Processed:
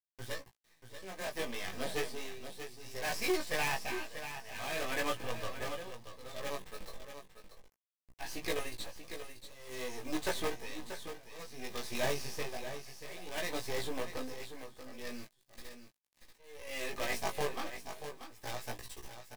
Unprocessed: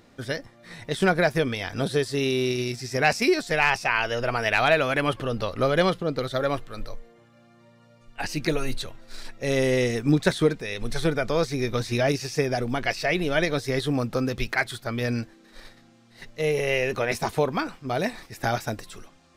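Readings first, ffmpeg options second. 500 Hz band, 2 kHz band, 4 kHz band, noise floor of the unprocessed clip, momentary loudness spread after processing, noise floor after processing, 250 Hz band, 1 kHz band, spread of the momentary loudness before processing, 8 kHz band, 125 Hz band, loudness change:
−15.5 dB, −14.0 dB, −10.5 dB, −56 dBFS, 15 LU, −79 dBFS, −17.5 dB, −13.5 dB, 11 LU, −6.5 dB, −21.0 dB, −14.5 dB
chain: -filter_complex "[0:a]highshelf=frequency=8200:gain=7,bandreject=frequency=50:width_type=h:width=6,bandreject=frequency=100:width_type=h:width=6,bandreject=frequency=150:width_type=h:width=6,bandreject=frequency=200:width_type=h:width=6,acrossover=split=360|570|3900[link_01][link_02][link_03][link_04];[link_01]acompressor=threshold=-35dB:ratio=12[link_05];[link_05][link_02][link_03][link_04]amix=inputs=4:normalize=0,flanger=delay=1.8:depth=5.4:regen=-63:speed=0.11:shape=triangular,acrusher=bits=5:dc=4:mix=0:aa=0.000001,flanger=delay=17:depth=4.1:speed=0.37,volume=30.5dB,asoftclip=hard,volume=-30.5dB,tremolo=f=0.58:d=0.95,asuperstop=centerf=1400:order=4:qfactor=7.6,asplit=2[link_06][link_07];[link_07]adelay=16,volume=-7.5dB[link_08];[link_06][link_08]amix=inputs=2:normalize=0,aecho=1:1:635:0.316,adynamicequalizer=threshold=0.00282:dfrequency=3600:dqfactor=0.7:tfrequency=3600:tqfactor=0.7:attack=5:release=100:ratio=0.375:range=1.5:mode=cutabove:tftype=highshelf,volume=2dB"

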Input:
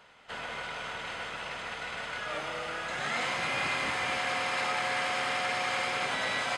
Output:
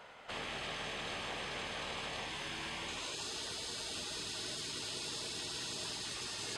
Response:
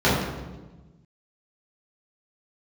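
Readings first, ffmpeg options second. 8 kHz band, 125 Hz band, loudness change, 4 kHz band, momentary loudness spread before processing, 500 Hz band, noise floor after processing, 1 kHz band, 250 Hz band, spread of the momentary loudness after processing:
+1.0 dB, −4.0 dB, −8.0 dB, −3.0 dB, 8 LU, −9.5 dB, −43 dBFS, −13.5 dB, −4.5 dB, 1 LU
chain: -af "afftfilt=real='re*lt(hypot(re,im),0.0251)':imag='im*lt(hypot(re,im),0.0251)':win_size=1024:overlap=0.75,equalizer=frequency=600:width=0.95:gain=5,volume=1dB"

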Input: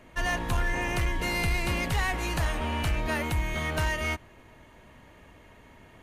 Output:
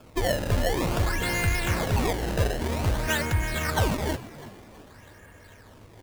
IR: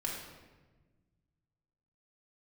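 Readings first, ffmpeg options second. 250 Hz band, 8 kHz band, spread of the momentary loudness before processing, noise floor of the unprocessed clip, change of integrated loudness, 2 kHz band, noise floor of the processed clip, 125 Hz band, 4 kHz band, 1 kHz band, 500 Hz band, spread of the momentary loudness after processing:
+4.0 dB, +5.0 dB, 2 LU, −54 dBFS, +2.5 dB, −0.5 dB, −51 dBFS, +4.0 dB, +2.0 dB, +1.5 dB, +6.5 dB, 6 LU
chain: -filter_complex "[0:a]equalizer=frequency=100:width_type=o:width=0.33:gain=11,equalizer=frequency=500:width_type=o:width=0.33:gain=5,equalizer=frequency=1600:width_type=o:width=0.33:gain=11,acrusher=samples=22:mix=1:aa=0.000001:lfo=1:lforange=35.2:lforate=0.52,asplit=5[link_01][link_02][link_03][link_04][link_05];[link_02]adelay=326,afreqshift=70,volume=-17dB[link_06];[link_03]adelay=652,afreqshift=140,volume=-24.5dB[link_07];[link_04]adelay=978,afreqshift=210,volume=-32.1dB[link_08];[link_05]adelay=1304,afreqshift=280,volume=-39.6dB[link_09];[link_01][link_06][link_07][link_08][link_09]amix=inputs=5:normalize=0"

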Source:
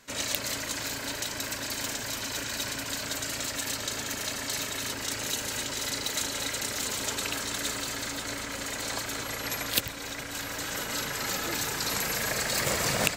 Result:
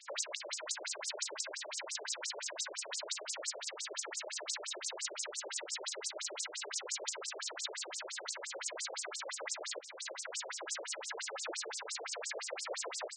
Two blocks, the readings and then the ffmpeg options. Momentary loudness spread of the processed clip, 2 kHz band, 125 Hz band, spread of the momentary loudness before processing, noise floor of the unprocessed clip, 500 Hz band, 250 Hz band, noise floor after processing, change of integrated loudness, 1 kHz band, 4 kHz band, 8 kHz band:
3 LU, −11.0 dB, below −40 dB, 5 LU, −37 dBFS, −7.5 dB, −22.0 dB, −49 dBFS, −9.5 dB, −10.5 dB, −9.0 dB, −8.0 dB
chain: -filter_complex "[0:a]acrossover=split=430|6900[link_01][link_02][link_03];[link_01]acompressor=threshold=-46dB:ratio=4[link_04];[link_02]acompressor=threshold=-41dB:ratio=4[link_05];[link_03]acompressor=threshold=-44dB:ratio=4[link_06];[link_04][link_05][link_06]amix=inputs=3:normalize=0,afftfilt=real='re*between(b*sr/1024,460*pow(7100/460,0.5+0.5*sin(2*PI*5.8*pts/sr))/1.41,460*pow(7100/460,0.5+0.5*sin(2*PI*5.8*pts/sr))*1.41)':imag='im*between(b*sr/1024,460*pow(7100/460,0.5+0.5*sin(2*PI*5.8*pts/sr))/1.41,460*pow(7100/460,0.5+0.5*sin(2*PI*5.8*pts/sr))*1.41)':win_size=1024:overlap=0.75,volume=6.5dB"

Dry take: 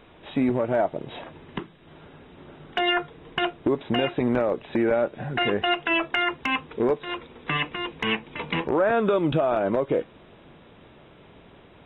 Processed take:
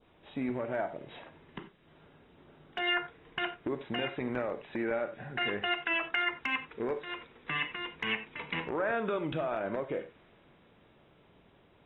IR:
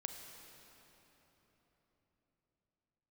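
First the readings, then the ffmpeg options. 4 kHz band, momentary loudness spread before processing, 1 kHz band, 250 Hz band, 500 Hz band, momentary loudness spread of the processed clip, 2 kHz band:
−7.5 dB, 11 LU, −9.0 dB, −11.5 dB, −11.0 dB, 13 LU, −5.0 dB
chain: -filter_complex "[1:a]atrim=start_sample=2205,atrim=end_sample=4410[link_01];[0:a][link_01]afir=irnorm=-1:irlink=0,adynamicequalizer=threshold=0.00631:dfrequency=1900:dqfactor=1.1:tfrequency=1900:tqfactor=1.1:attack=5:release=100:ratio=0.375:range=4:mode=boostabove:tftype=bell,volume=-8.5dB"

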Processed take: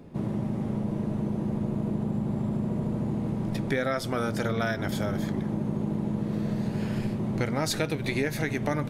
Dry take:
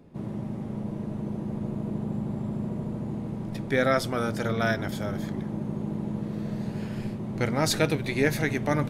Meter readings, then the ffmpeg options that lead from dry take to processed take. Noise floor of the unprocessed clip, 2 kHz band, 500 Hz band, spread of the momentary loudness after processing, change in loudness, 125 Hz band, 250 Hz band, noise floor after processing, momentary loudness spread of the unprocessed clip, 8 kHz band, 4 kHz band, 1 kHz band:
−35 dBFS, −3.0 dB, −2.0 dB, 2 LU, 0.0 dB, +1.0 dB, +1.5 dB, −33 dBFS, 9 LU, −2.5 dB, −2.0 dB, −2.0 dB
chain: -af "acompressor=threshold=-30dB:ratio=6,volume=5.5dB"

